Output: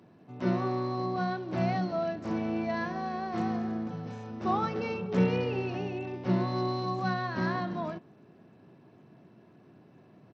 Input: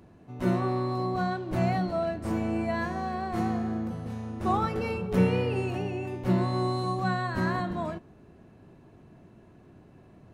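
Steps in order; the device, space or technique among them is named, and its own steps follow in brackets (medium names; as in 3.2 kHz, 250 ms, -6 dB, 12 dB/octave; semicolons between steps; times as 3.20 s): 3.87–4.31 s: comb 6.8 ms, depth 52%; Bluetooth headset (high-pass 120 Hz 24 dB/octave; resampled via 16 kHz; trim -2 dB; SBC 64 kbps 32 kHz)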